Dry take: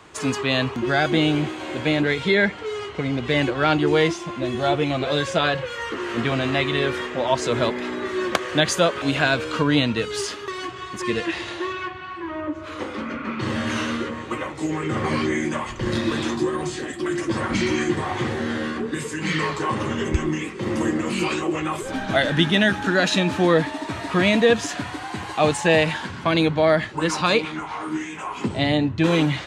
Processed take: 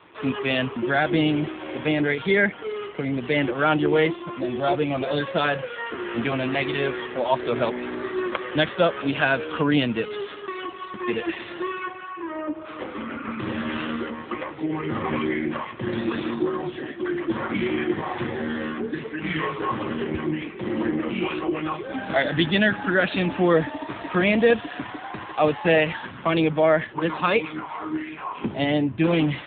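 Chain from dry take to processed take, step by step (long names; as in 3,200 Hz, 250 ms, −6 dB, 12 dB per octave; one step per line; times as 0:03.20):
high-pass filter 150 Hz 6 dB per octave
AMR narrowband 7.4 kbit/s 8,000 Hz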